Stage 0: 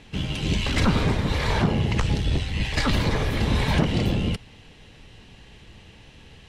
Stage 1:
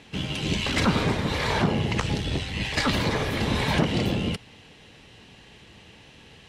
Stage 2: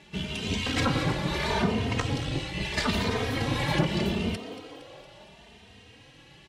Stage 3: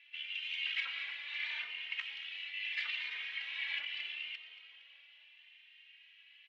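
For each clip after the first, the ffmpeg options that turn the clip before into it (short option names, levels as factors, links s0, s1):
-af "highpass=f=160:p=1,volume=1.12"
-filter_complex "[0:a]asplit=2[s0][s1];[s1]asplit=6[s2][s3][s4][s5][s6][s7];[s2]adelay=231,afreqshift=98,volume=0.211[s8];[s3]adelay=462,afreqshift=196,volume=0.127[s9];[s4]adelay=693,afreqshift=294,volume=0.0759[s10];[s5]adelay=924,afreqshift=392,volume=0.0457[s11];[s6]adelay=1155,afreqshift=490,volume=0.0275[s12];[s7]adelay=1386,afreqshift=588,volume=0.0164[s13];[s8][s9][s10][s11][s12][s13]amix=inputs=6:normalize=0[s14];[s0][s14]amix=inputs=2:normalize=0,asplit=2[s15][s16];[s16]adelay=3,afreqshift=0.77[s17];[s15][s17]amix=inputs=2:normalize=1"
-af "asuperpass=centerf=2500:order=4:qfactor=2.1,volume=0.794"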